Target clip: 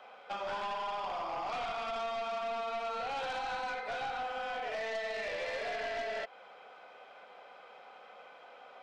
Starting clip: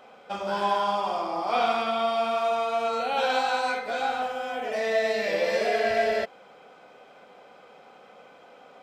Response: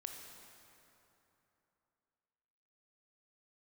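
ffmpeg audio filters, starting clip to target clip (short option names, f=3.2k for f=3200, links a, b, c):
-filter_complex "[0:a]acrossover=split=520 4900:gain=0.2 1 0.224[a][b][c];[a][b][c]amix=inputs=3:normalize=0,acrossover=split=820|4300[d][e][f];[d]acompressor=threshold=-36dB:ratio=4[g];[e]acompressor=threshold=-36dB:ratio=4[h];[f]acompressor=threshold=-59dB:ratio=4[i];[g][h][i]amix=inputs=3:normalize=0,aeval=exprs='0.0841*(cos(1*acos(clip(val(0)/0.0841,-1,1)))-cos(1*PI/2))+0.0188*(cos(2*acos(clip(val(0)/0.0841,-1,1)))-cos(2*PI/2))+0.0237*(cos(5*acos(clip(val(0)/0.0841,-1,1)))-cos(5*PI/2))':c=same,volume=-8dB"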